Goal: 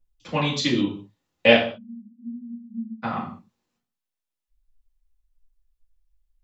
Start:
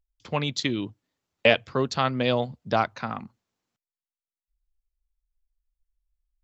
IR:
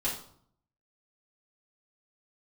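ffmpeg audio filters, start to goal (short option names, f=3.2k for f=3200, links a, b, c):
-filter_complex "[0:a]asplit=3[a][b][c];[a]afade=t=out:st=1.64:d=0.02[d];[b]asuperpass=centerf=220:order=12:qfactor=6,afade=t=in:st=1.64:d=0.02,afade=t=out:st=3.02:d=0.02[e];[c]afade=t=in:st=3.02:d=0.02[f];[d][e][f]amix=inputs=3:normalize=0[g];[1:a]atrim=start_sample=2205,afade=t=out:st=0.27:d=0.01,atrim=end_sample=12348[h];[g][h]afir=irnorm=-1:irlink=0,volume=-2dB"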